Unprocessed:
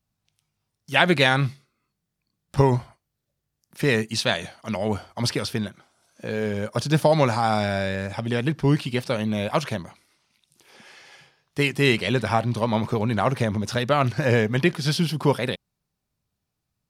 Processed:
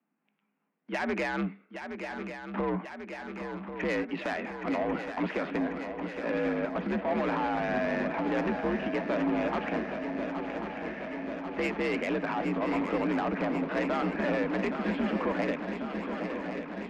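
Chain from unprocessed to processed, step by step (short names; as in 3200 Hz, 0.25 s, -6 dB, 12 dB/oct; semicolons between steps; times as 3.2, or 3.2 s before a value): mistuned SSB +58 Hz 150–2400 Hz; in parallel at +0.5 dB: compressor, threshold -33 dBFS, peak gain reduction 18 dB; on the sum: limiter -15 dBFS, peak gain reduction 11 dB; soft clip -21.5 dBFS, distortion -14 dB; swung echo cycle 1.091 s, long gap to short 3:1, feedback 72%, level -8.5 dB; gain -3 dB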